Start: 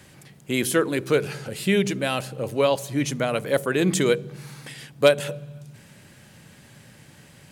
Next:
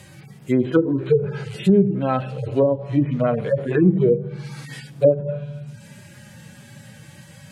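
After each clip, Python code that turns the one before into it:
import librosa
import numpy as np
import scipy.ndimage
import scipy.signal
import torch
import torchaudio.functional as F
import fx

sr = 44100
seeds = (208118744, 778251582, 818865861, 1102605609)

y = fx.hpss_only(x, sr, part='harmonic')
y = fx.env_lowpass_down(y, sr, base_hz=430.0, full_db=-18.5)
y = y * librosa.db_to_amplitude(7.5)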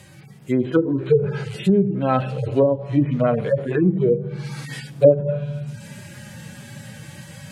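y = fx.rider(x, sr, range_db=10, speed_s=0.5)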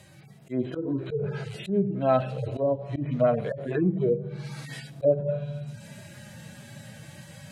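y = fx.auto_swell(x, sr, attack_ms=106.0)
y = fx.small_body(y, sr, hz=(660.0, 3900.0), ring_ms=55, db=12)
y = y * librosa.db_to_amplitude(-6.5)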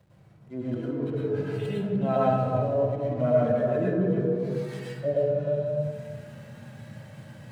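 y = fx.backlash(x, sr, play_db=-45.5)
y = fx.echo_tape(y, sr, ms=302, feedback_pct=37, wet_db=-3.0, lp_hz=1200.0, drive_db=8.0, wow_cents=39)
y = fx.rev_plate(y, sr, seeds[0], rt60_s=0.79, hf_ratio=0.55, predelay_ms=90, drr_db=-5.5)
y = y * librosa.db_to_amplitude(-7.0)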